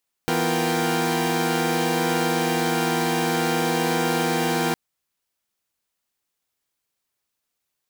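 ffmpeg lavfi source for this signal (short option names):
-f lavfi -i "aevalsrc='0.0596*((2*mod(164.81*t,1)-1)+(2*mod(246.94*t,1)-1)+(2*mod(349.23*t,1)-1)+(2*mod(466.16*t,1)-1)+(2*mod(783.99*t,1)-1))':d=4.46:s=44100"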